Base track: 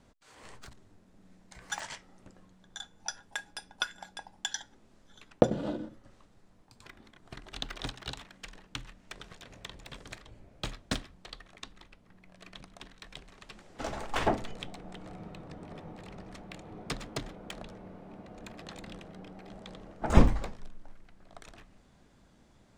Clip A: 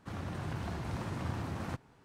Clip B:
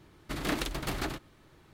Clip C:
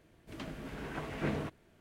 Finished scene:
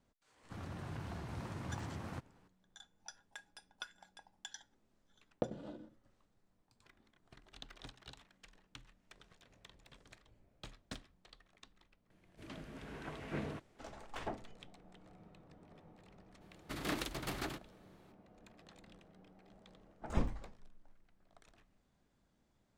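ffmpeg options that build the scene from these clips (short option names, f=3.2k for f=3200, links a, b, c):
-filter_complex "[0:a]volume=-14.5dB[a];[3:a]lowpass=12k[b];[2:a]highpass=f=67:p=1[c];[1:a]atrim=end=2.04,asetpts=PTS-STARTPTS,volume=-6.5dB,afade=t=in:d=0.004:c=hsin,afade=t=out:st=2.036:d=0.004:c=hsin,adelay=440[d];[b]atrim=end=1.8,asetpts=PTS-STARTPTS,volume=-6.5dB,afade=t=in:d=0.004:c=hsin,afade=t=out:st=1.796:d=0.004:c=hsin,adelay=12100[e];[c]atrim=end=1.73,asetpts=PTS-STARTPTS,volume=-6.5dB,afade=t=in:d=0.02,afade=t=out:st=1.71:d=0.02,adelay=16400[f];[a][d][e][f]amix=inputs=4:normalize=0"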